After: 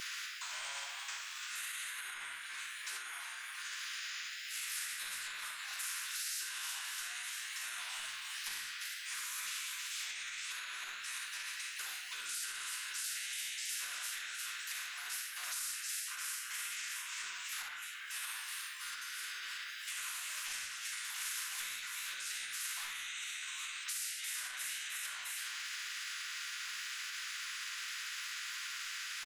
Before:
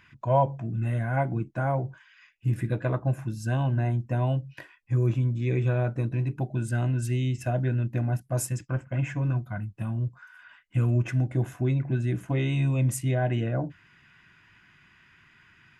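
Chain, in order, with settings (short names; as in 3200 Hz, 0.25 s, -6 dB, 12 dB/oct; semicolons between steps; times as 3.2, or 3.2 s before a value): rippled Chebyshev high-pass 1400 Hz, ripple 3 dB; flange 1.7 Hz, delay 2.9 ms, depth 7.6 ms, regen -4%; frequency-shifting echo 0.181 s, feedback 45%, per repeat +120 Hz, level -13 dB; compressor 6:1, threshold -57 dBFS, peak gain reduction 21.5 dB; tempo 0.54×; shoebox room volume 500 m³, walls furnished, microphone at 9.2 m; limiter -42 dBFS, peak gain reduction 9 dB; spectral compressor 4:1; gain +15 dB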